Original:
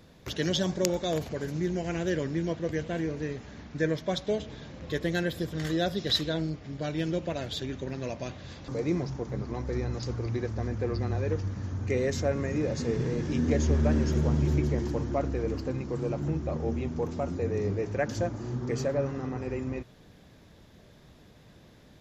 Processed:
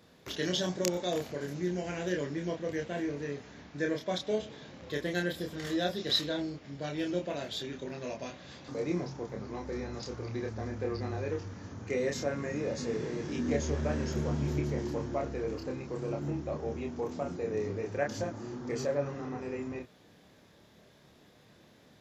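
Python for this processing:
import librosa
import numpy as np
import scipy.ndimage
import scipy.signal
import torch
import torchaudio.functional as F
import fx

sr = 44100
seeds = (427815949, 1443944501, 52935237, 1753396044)

y = fx.highpass(x, sr, hz=230.0, slope=6)
y = fx.doubler(y, sr, ms=28.0, db=-3)
y = y * 10.0 ** (-3.5 / 20.0)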